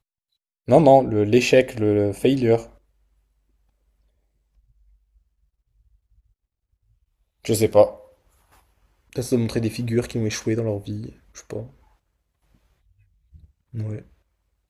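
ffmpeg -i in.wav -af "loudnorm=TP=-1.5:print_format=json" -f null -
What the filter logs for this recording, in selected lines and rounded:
"input_i" : "-20.6",
"input_tp" : "-1.5",
"input_lra" : "18.5",
"input_thresh" : "-34.7",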